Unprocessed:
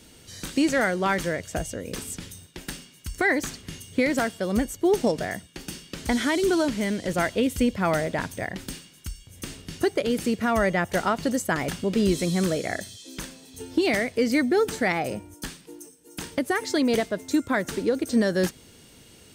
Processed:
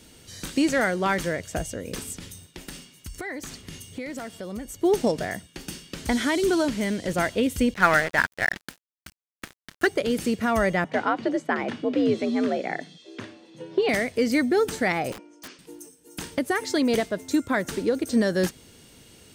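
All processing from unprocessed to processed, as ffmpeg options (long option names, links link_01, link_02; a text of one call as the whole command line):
ffmpeg -i in.wav -filter_complex "[0:a]asettb=1/sr,asplit=3[link_01][link_02][link_03];[link_01]atrim=end=2.124[link_04];[link_02]atrim=start=2.12:end=4.83,asetpts=PTS-STARTPTS,afade=type=in:duration=0.004:curve=qsin,afade=type=out:start_time=2.706:duration=0.004:curve=qsin,bandreject=frequency=1600:width=21,acompressor=threshold=-34dB:ratio=3:attack=3.2:release=140:knee=1:detection=peak[link_05];[link_03]atrim=start=4.826[link_06];[link_04][link_05]acrossfade=duration=0.004:curve1=hsin:curve2=qsin[link_07];[link_07][link_06]acrossfade=duration=0.004:curve1=qsin:curve2=hsin,asettb=1/sr,asplit=3[link_08][link_09][link_10];[link_08]atrim=end=7.744[link_11];[link_09]atrim=start=7.74:end=9.87,asetpts=PTS-STARTPTS,afade=type=in:duration=0.004:curve=qsin,afade=type=out:start_time=2.126:duration=0.004:curve=qsin,highpass=42,equalizer=frequency=1600:width_type=o:width=1.1:gain=14.5,aeval=exprs='sgn(val(0))*max(abs(val(0))-0.0335,0)':channel_layout=same[link_12];[link_10]atrim=start=9.866[link_13];[link_11][link_12]acrossfade=duration=0.004:curve1=hsin:curve2=qsin[link_14];[link_14][link_13]acrossfade=duration=0.004:curve1=qsin:curve2=hsin,asettb=1/sr,asplit=3[link_15][link_16][link_17];[link_15]atrim=end=10.844[link_18];[link_16]atrim=start=10.84:end=13.89,asetpts=PTS-STARTPTS,afade=type=in:duration=0.004:curve=qsin,afade=type=out:start_time=3.046:duration=0.004:curve=qsin,afreqshift=66,highpass=110,lowpass=2900[link_19];[link_17]atrim=start=13.886[link_20];[link_18][link_19]acrossfade=duration=0.004:curve1=hsin:curve2=qsin[link_21];[link_21][link_20]acrossfade=duration=0.004:curve1=qsin:curve2=hsin,asettb=1/sr,asplit=3[link_22][link_23][link_24];[link_22]atrim=end=15.124[link_25];[link_23]atrim=start=15.12:end=15.59,asetpts=PTS-STARTPTS,afade=type=in:duration=0.004:curve=qsin,afade=type=out:start_time=0.466:duration=0.004:curve=qsin,highpass=frequency=280:width=0.5412,highpass=frequency=280:width=1.3066,equalizer=frequency=810:width_type=q:width=4:gain=-8,equalizer=frequency=1800:width_type=q:width=4:gain=-4,equalizer=frequency=3800:width_type=q:width=4:gain=-9,lowpass=frequency=5500:width=0.5412,lowpass=frequency=5500:width=1.3066,aeval=exprs='(mod(47.3*val(0)+1,2)-1)/47.3':channel_layout=same[link_26];[link_24]atrim=start=15.586[link_27];[link_25][link_26]acrossfade=duration=0.004:curve1=hsin:curve2=qsin[link_28];[link_28][link_27]acrossfade=duration=0.004:curve1=qsin:curve2=hsin" out.wav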